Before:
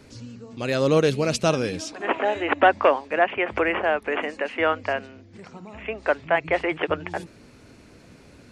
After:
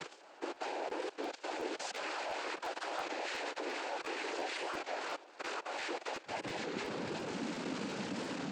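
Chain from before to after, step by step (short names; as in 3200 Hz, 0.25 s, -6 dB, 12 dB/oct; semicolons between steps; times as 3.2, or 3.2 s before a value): infinite clipping; Chebyshev high-pass 480 Hz, order 4, from 6.25 s 200 Hz; harmonic-percussive split percussive -16 dB; level quantiser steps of 17 dB; vibrato 0.43 Hz 24 cents; noise vocoder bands 8; air absorption 73 m; crackling interface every 0.35 s, samples 512, repeat, from 0.54; record warp 33 1/3 rpm, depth 100 cents; gain -4 dB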